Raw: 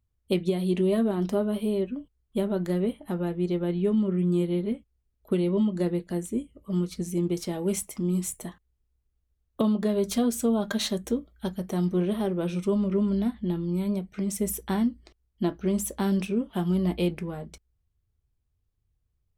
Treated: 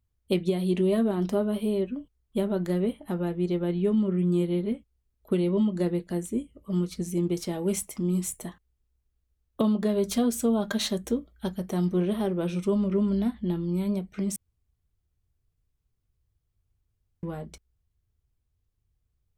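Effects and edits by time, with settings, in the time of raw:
0:14.36–0:17.23: fill with room tone

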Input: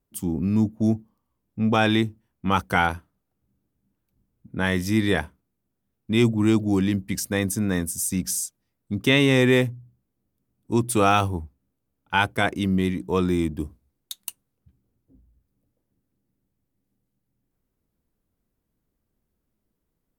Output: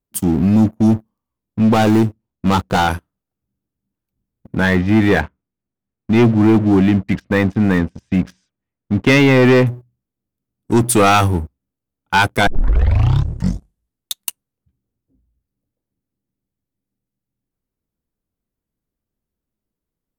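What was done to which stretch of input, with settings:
0:01.74–0:02.88: running median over 25 samples
0:04.60–0:09.67: low-pass filter 2,800 Hz 24 dB per octave
0:12.47: tape start 1.68 s
whole clip: leveller curve on the samples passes 3

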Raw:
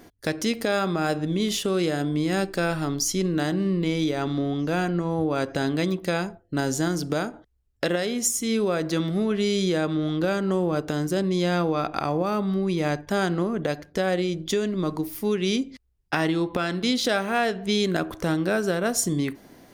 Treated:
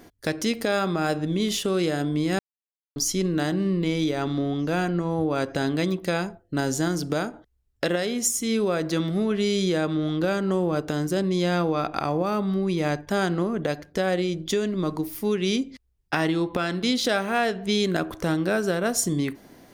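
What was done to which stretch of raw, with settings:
0:02.39–0:02.96: silence

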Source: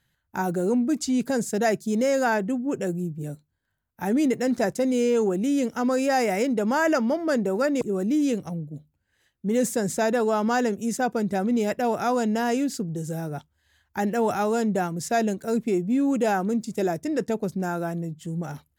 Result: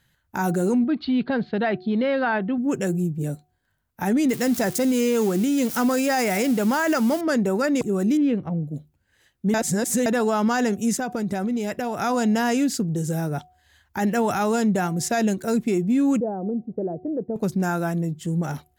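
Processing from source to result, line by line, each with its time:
0:00.84–0:02.58: Chebyshev low-pass with heavy ripple 4,400 Hz, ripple 3 dB
0:04.29–0:07.21: spike at every zero crossing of −28 dBFS
0:08.17–0:08.63: high-frequency loss of the air 460 metres
0:09.54–0:10.06: reverse
0:10.94–0:12.02: downward compressor, threshold −27 dBFS
0:16.20–0:17.36: transistor ladder low-pass 700 Hz, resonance 35%
whole clip: hum removal 365.9 Hz, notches 2; dynamic equaliser 500 Hz, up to −5 dB, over −34 dBFS, Q 0.97; brickwall limiter −20.5 dBFS; level +6 dB

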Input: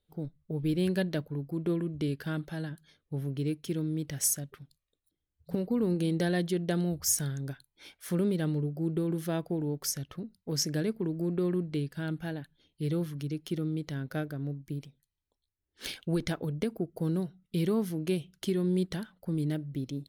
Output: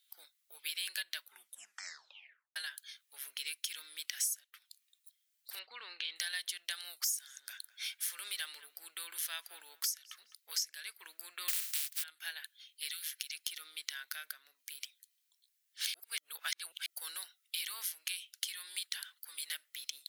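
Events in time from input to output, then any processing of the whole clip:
0:01.21: tape stop 1.35 s
0:05.59–0:06.16: low-pass filter 3,900 Hz 24 dB per octave
0:06.89–0:10.35: feedback echo with a low-pass in the loop 207 ms, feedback 31%, low-pass 2,300 Hz, level −20 dB
0:11.48–0:12.02: compressing power law on the bin magnitudes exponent 0.13
0:12.91–0:13.36: Butterworth high-pass 1,500 Hz 48 dB per octave
0:14.04–0:14.67: downward compressor 2.5 to 1, threshold −39 dBFS
0:15.94–0:16.86: reverse
0:17.64–0:19.72: high-pass filter 740 Hz 6 dB per octave
whole clip: Bessel high-pass filter 2,500 Hz, order 4; high-shelf EQ 11,000 Hz +4.5 dB; downward compressor 6 to 1, threshold −49 dBFS; level +14 dB

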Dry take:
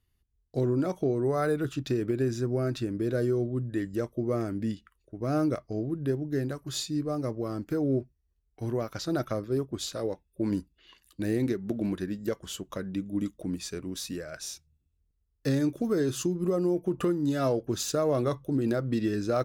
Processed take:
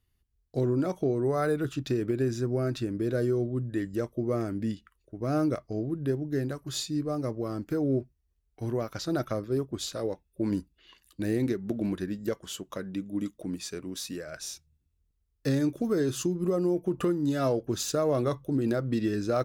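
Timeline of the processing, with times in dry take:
0:12.38–0:14.27: low-shelf EQ 100 Hz −10 dB

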